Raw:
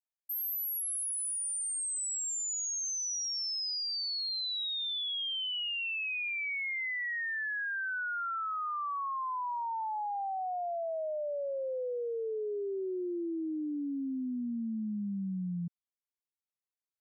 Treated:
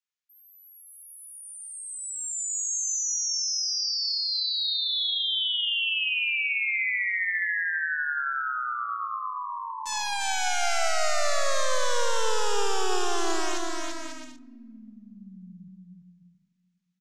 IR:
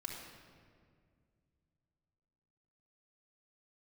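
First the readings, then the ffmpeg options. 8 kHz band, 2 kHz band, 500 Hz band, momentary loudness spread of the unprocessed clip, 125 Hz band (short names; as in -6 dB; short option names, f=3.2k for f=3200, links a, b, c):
+5.5 dB, +8.0 dB, +4.0 dB, 4 LU, n/a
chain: -filter_complex "[0:a]acrossover=split=240 4200:gain=0.126 1 0.224[a][b][c];[a][b][c]amix=inputs=3:normalize=0,acrossover=split=160|1100[d][e][f];[e]acrusher=bits=3:dc=4:mix=0:aa=0.000001[g];[d][g][f]amix=inputs=3:normalize=0,lowpass=f=6.8k:t=q:w=2.7,asplit=2[h][i];[i]adelay=27,volume=-11.5dB[j];[h][j]amix=inputs=2:normalize=0,aecho=1:1:340|544|666.4|739.8|783.9:0.631|0.398|0.251|0.158|0.1,asplit=2[k][l];[1:a]atrim=start_sample=2205[m];[l][m]afir=irnorm=-1:irlink=0,volume=-16dB[n];[k][n]amix=inputs=2:normalize=0,volume=5dB"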